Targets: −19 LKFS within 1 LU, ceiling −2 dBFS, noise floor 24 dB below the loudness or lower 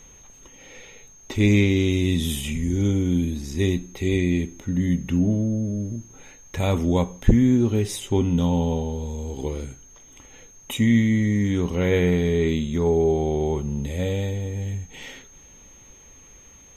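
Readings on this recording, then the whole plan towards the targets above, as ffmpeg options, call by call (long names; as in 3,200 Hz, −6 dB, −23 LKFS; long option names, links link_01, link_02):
interfering tone 6,400 Hz; level of the tone −48 dBFS; integrated loudness −23.0 LKFS; sample peak −3.0 dBFS; target loudness −19.0 LKFS
→ -af "bandreject=frequency=6400:width=30"
-af "volume=4dB,alimiter=limit=-2dB:level=0:latency=1"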